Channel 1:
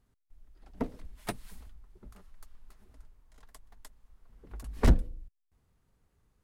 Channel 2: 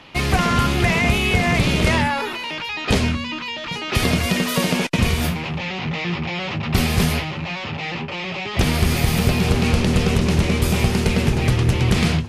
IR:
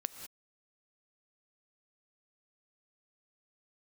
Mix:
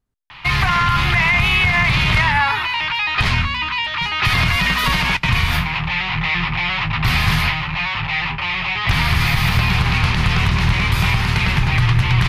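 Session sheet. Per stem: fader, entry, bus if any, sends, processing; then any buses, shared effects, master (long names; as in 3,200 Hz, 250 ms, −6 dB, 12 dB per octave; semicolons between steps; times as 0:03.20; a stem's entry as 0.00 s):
−6.0 dB, 0.00 s, no send, no processing
−1.5 dB, 0.30 s, send −18.5 dB, sub-octave generator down 2 octaves, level −3 dB; graphic EQ with 10 bands 125 Hz +8 dB, 250 Hz −9 dB, 500 Hz −12 dB, 1,000 Hz +11 dB, 2,000 Hz +8 dB, 4,000 Hz +6 dB, 8,000 Hz −7 dB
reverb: on, pre-delay 3 ms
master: brickwall limiter −6.5 dBFS, peak gain reduction 8.5 dB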